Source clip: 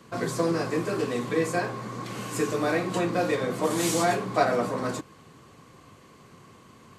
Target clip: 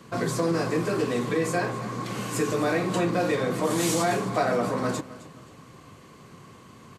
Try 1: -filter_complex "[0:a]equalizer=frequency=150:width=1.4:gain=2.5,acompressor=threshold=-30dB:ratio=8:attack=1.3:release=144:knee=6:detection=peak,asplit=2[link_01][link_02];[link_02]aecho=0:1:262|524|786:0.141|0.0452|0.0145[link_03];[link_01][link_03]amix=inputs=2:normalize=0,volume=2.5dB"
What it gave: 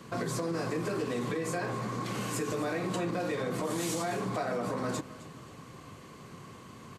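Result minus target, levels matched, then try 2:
downward compressor: peak gain reduction +9.5 dB
-filter_complex "[0:a]equalizer=frequency=150:width=1.4:gain=2.5,acompressor=threshold=-19dB:ratio=8:attack=1.3:release=144:knee=6:detection=peak,asplit=2[link_01][link_02];[link_02]aecho=0:1:262|524|786:0.141|0.0452|0.0145[link_03];[link_01][link_03]amix=inputs=2:normalize=0,volume=2.5dB"

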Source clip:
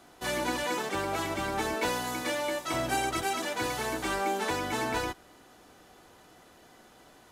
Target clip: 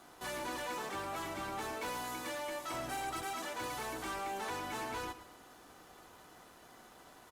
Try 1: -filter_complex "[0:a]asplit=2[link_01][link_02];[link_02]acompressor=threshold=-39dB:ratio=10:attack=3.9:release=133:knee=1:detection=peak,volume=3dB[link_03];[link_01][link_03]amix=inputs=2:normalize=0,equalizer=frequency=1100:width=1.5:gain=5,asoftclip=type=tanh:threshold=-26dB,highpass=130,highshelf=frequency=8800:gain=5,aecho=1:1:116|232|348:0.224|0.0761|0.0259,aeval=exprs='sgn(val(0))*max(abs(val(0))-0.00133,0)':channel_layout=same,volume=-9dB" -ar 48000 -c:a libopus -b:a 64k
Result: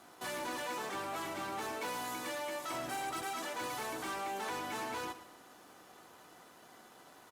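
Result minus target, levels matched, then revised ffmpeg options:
downward compressor: peak gain reduction −7 dB; 125 Hz band −3.5 dB
-filter_complex "[0:a]asplit=2[link_01][link_02];[link_02]acompressor=threshold=-46.5dB:ratio=10:attack=3.9:release=133:knee=1:detection=peak,volume=3dB[link_03];[link_01][link_03]amix=inputs=2:normalize=0,equalizer=frequency=1100:width=1.5:gain=5,asoftclip=type=tanh:threshold=-26dB,highshelf=frequency=8800:gain=5,aecho=1:1:116|232|348:0.224|0.0761|0.0259,aeval=exprs='sgn(val(0))*max(abs(val(0))-0.00133,0)':channel_layout=same,volume=-9dB" -ar 48000 -c:a libopus -b:a 64k

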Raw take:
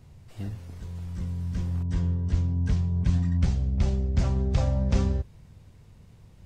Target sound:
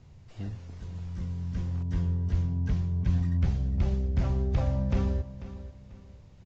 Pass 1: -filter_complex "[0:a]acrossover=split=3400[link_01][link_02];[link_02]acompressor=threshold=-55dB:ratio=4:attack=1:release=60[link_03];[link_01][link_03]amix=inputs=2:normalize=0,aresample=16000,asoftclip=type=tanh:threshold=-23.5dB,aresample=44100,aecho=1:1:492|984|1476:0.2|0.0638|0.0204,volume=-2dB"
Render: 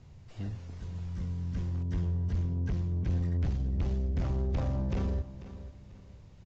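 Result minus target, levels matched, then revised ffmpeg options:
soft clipping: distortion +14 dB
-filter_complex "[0:a]acrossover=split=3400[link_01][link_02];[link_02]acompressor=threshold=-55dB:ratio=4:attack=1:release=60[link_03];[link_01][link_03]amix=inputs=2:normalize=0,aresample=16000,asoftclip=type=tanh:threshold=-12dB,aresample=44100,aecho=1:1:492|984|1476:0.2|0.0638|0.0204,volume=-2dB"

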